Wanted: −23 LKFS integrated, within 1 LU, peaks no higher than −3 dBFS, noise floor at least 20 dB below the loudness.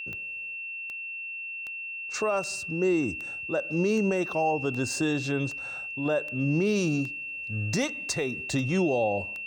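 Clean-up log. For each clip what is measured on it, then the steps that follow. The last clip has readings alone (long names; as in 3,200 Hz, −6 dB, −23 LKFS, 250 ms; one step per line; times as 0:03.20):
number of clicks 13; interfering tone 2,700 Hz; level of the tone −34 dBFS; integrated loudness −28.5 LKFS; sample peak −16.0 dBFS; target loudness −23.0 LKFS
→ click removal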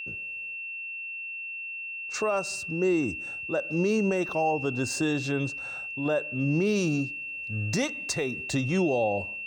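number of clicks 0; interfering tone 2,700 Hz; level of the tone −34 dBFS
→ notch filter 2,700 Hz, Q 30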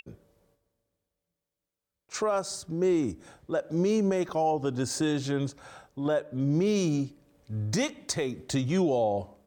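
interfering tone none found; integrated loudness −28.5 LKFS; sample peak −17.5 dBFS; target loudness −23.0 LKFS
→ level +5.5 dB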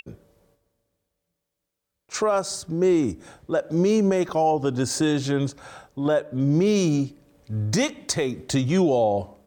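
integrated loudness −23.0 LKFS; sample peak −12.0 dBFS; background noise floor −82 dBFS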